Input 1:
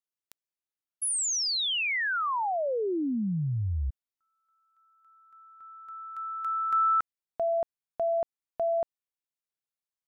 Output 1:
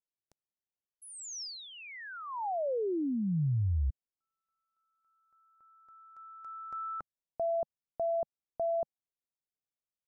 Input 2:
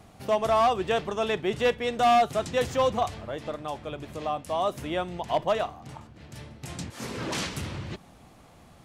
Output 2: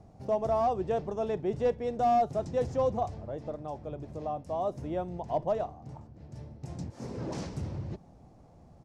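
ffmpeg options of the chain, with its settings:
-af "firequalizer=gain_entry='entry(150,0);entry(210,-3);entry(550,-3);entry(820,-5);entry(1200,-14);entry(3200,-21);entry(5300,-11);entry(13000,-27)':delay=0.05:min_phase=1"

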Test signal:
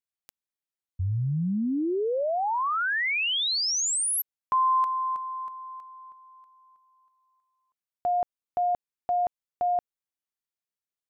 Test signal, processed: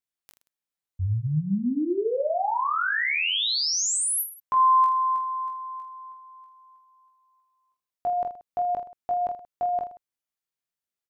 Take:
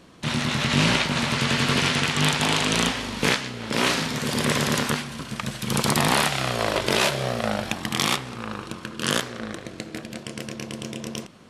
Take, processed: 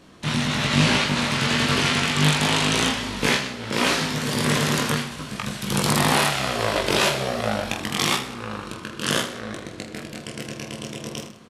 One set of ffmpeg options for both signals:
-af "aecho=1:1:20|46|79.8|123.7|180.9:0.631|0.398|0.251|0.158|0.1,volume=-1dB"

